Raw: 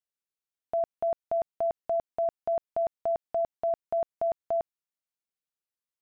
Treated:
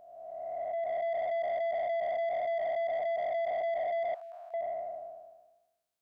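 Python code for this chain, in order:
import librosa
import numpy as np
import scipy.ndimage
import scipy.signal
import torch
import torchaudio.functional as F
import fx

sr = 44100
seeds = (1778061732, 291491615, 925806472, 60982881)

y = fx.spec_blur(x, sr, span_ms=884.0)
y = fx.highpass(y, sr, hz=1100.0, slope=24, at=(4.14, 4.54))
y = 10.0 ** (-36.5 / 20.0) * np.tanh(y / 10.0 ** (-36.5 / 20.0))
y = y * librosa.db_to_amplitude(8.0)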